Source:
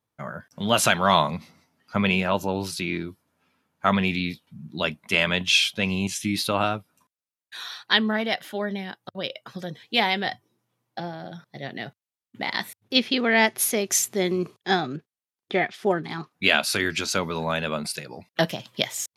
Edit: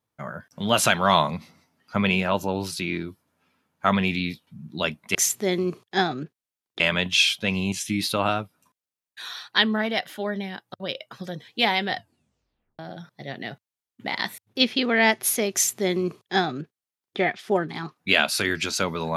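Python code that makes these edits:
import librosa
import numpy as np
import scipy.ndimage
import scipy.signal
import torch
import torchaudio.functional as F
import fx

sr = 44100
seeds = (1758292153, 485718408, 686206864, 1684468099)

y = fx.edit(x, sr, fx.tape_stop(start_s=10.3, length_s=0.84),
    fx.duplicate(start_s=13.88, length_s=1.65, to_s=5.15), tone=tone)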